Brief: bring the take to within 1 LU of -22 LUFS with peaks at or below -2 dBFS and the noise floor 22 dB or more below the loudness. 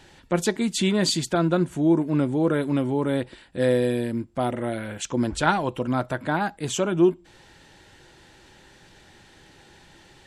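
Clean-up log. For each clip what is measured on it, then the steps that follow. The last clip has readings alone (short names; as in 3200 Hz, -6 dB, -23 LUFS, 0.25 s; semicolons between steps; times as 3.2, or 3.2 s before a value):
loudness -24.0 LUFS; peak -6.5 dBFS; loudness target -22.0 LUFS
-> gain +2 dB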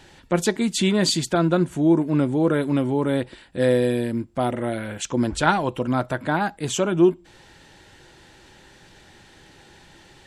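loudness -22.0 LUFS; peak -4.5 dBFS; noise floor -51 dBFS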